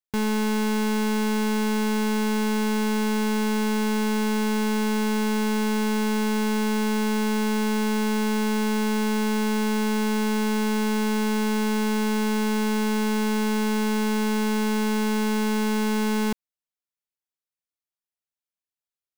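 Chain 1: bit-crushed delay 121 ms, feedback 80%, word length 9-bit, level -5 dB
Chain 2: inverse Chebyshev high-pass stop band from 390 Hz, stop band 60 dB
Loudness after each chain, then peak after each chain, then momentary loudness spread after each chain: -14.5 LUFS, -32.5 LUFS; -12.0 dBFS, -19.0 dBFS; 1 LU, 0 LU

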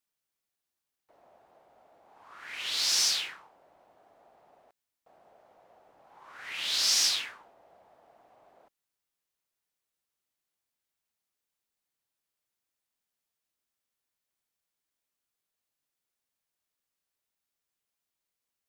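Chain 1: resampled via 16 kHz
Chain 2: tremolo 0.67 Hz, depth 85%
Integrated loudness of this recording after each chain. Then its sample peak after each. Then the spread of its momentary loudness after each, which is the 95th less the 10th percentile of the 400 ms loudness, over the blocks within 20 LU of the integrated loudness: -27.0 LUFS, -29.0 LUFS; -13.5 dBFS, -14.0 dBFS; 18 LU, 21 LU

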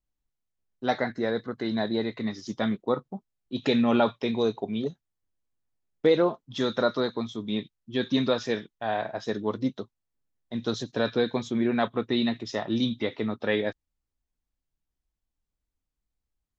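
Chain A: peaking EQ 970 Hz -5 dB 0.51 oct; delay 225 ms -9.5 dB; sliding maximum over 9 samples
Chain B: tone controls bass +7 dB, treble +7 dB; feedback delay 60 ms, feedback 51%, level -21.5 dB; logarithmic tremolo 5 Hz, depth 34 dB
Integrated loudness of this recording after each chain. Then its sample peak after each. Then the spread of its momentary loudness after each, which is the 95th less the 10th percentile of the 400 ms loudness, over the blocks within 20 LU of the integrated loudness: -28.5 LUFS, -32.5 LUFS; -11.0 dBFS, -9.5 dBFS; 9 LU, 12 LU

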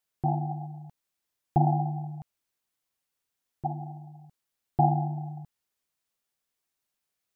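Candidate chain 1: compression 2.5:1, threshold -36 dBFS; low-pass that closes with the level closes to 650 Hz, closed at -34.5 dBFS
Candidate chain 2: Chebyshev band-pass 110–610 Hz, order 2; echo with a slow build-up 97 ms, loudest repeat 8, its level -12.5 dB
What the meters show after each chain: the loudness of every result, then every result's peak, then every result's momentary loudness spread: -40.5 LUFS, -33.5 LUFS; -20.5 dBFS, -12.5 dBFS; 13 LU, 15 LU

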